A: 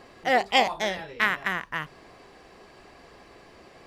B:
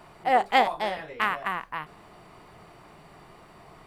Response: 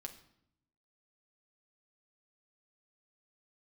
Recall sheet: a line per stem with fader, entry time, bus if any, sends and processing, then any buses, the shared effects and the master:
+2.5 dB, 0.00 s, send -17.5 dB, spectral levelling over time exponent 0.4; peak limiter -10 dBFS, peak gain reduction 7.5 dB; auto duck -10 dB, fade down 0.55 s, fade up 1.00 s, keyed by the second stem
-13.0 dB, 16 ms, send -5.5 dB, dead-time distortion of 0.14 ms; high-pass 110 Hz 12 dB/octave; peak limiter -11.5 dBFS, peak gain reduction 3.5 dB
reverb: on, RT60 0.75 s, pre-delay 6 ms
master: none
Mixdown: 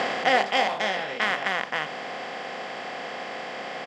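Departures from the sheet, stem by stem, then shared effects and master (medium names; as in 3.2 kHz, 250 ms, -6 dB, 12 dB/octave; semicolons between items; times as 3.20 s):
stem A: missing peak limiter -10 dBFS, peak gain reduction 7.5 dB; master: extra band-pass 150–6900 Hz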